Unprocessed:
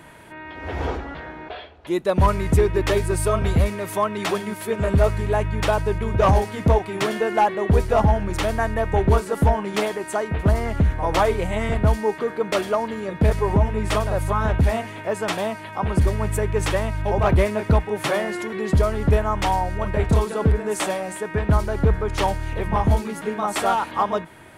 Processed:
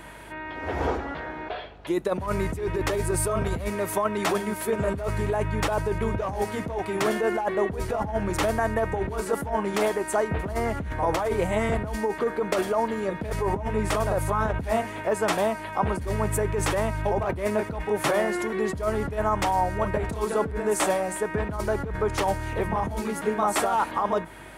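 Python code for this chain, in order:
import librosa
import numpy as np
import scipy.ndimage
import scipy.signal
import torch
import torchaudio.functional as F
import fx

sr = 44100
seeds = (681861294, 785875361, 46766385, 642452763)

y = scipy.signal.sosfilt(scipy.signal.butter(4, 41.0, 'highpass', fs=sr, output='sos'), x)
y = fx.over_compress(y, sr, threshold_db=-22.0, ratio=-1.0)
y = fx.low_shelf(y, sr, hz=180.0, db=-7.5)
y = fx.add_hum(y, sr, base_hz=50, snr_db=26)
y = fx.dynamic_eq(y, sr, hz=3300.0, q=0.81, threshold_db=-41.0, ratio=4.0, max_db=-6)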